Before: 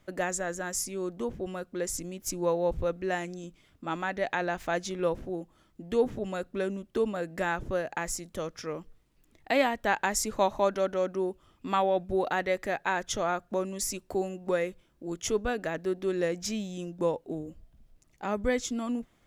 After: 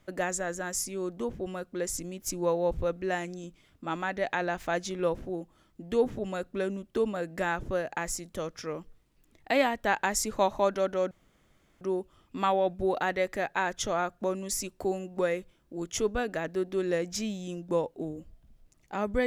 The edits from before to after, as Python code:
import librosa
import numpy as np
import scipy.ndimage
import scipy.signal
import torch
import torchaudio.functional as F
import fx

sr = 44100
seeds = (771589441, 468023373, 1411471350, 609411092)

y = fx.edit(x, sr, fx.insert_room_tone(at_s=11.11, length_s=0.7), tone=tone)